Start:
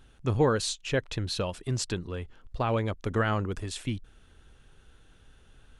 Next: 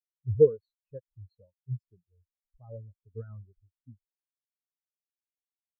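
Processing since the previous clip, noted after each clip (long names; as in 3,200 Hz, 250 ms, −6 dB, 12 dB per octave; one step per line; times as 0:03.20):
every bin expanded away from the loudest bin 4 to 1
level +4 dB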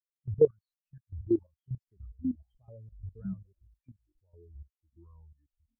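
time-frequency box erased 0:00.47–0:01.44, 210–1,100 Hz
output level in coarse steps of 16 dB
delay with pitch and tempo change per echo 755 ms, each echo −5 semitones, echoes 3, each echo −6 dB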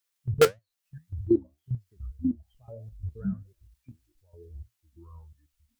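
in parallel at −6.5 dB: wrap-around overflow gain 14.5 dB
on the sum: flanger 1.7 Hz, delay 8.3 ms, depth 8 ms, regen +64%
one half of a high-frequency compander encoder only
level +6.5 dB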